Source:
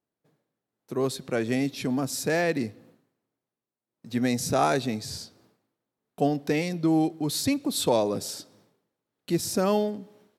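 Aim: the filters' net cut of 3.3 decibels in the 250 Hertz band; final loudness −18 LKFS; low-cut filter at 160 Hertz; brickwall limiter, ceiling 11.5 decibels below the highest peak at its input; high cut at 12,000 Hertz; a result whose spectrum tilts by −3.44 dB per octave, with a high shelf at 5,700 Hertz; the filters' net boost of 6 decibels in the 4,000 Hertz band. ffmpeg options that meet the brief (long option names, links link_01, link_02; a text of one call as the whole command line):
ffmpeg -i in.wav -af "highpass=160,lowpass=12000,equalizer=frequency=250:width_type=o:gain=-3.5,equalizer=frequency=4000:width_type=o:gain=8.5,highshelf=frequency=5700:gain=-3.5,volume=13.5dB,alimiter=limit=-8dB:level=0:latency=1" out.wav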